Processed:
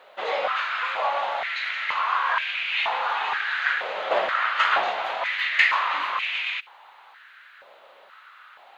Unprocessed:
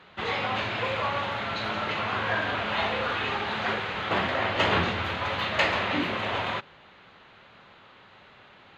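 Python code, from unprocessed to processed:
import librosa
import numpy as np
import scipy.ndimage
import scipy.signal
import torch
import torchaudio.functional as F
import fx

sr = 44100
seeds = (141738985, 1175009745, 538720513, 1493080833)

y = fx.quant_dither(x, sr, seeds[0], bits=12, dither='none')
y = fx.filter_held_highpass(y, sr, hz=2.1, low_hz=580.0, high_hz=2400.0)
y = y * 10.0 ** (-1.5 / 20.0)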